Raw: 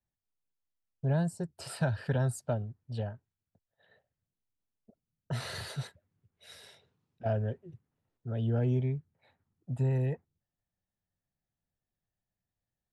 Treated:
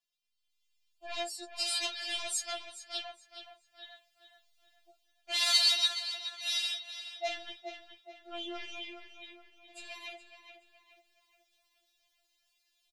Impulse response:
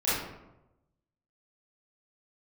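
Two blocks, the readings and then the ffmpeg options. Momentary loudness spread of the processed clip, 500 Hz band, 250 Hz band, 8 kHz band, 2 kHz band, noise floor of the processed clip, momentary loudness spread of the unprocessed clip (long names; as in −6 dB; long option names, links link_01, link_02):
25 LU, −7.5 dB, −16.5 dB, +11.5 dB, +6.5 dB, −78 dBFS, 16 LU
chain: -filter_complex "[0:a]acontrast=84,lowshelf=frequency=230:gain=10,dynaudnorm=framelen=370:gausssize=3:maxgain=13.5dB,acrossover=split=580 4100:gain=0.0891 1 0.1[link_01][link_02][link_03];[link_01][link_02][link_03]amix=inputs=3:normalize=0,asoftclip=type=tanh:threshold=-22.5dB,flanger=delay=5.6:depth=8.3:regen=72:speed=0.76:shape=triangular,aexciter=amount=10.6:drive=4.9:freq=2400,asplit=2[link_04][link_05];[link_05]adelay=421,lowpass=frequency=3800:poles=1,volume=-8.5dB,asplit=2[link_06][link_07];[link_07]adelay=421,lowpass=frequency=3800:poles=1,volume=0.44,asplit=2[link_08][link_09];[link_09]adelay=421,lowpass=frequency=3800:poles=1,volume=0.44,asplit=2[link_10][link_11];[link_11]adelay=421,lowpass=frequency=3800:poles=1,volume=0.44,asplit=2[link_12][link_13];[link_13]adelay=421,lowpass=frequency=3800:poles=1,volume=0.44[link_14];[link_06][link_08][link_10][link_12][link_14]amix=inputs=5:normalize=0[link_15];[link_04][link_15]amix=inputs=2:normalize=0,afftfilt=real='re*4*eq(mod(b,16),0)':imag='im*4*eq(mod(b,16),0)':win_size=2048:overlap=0.75,volume=-4.5dB"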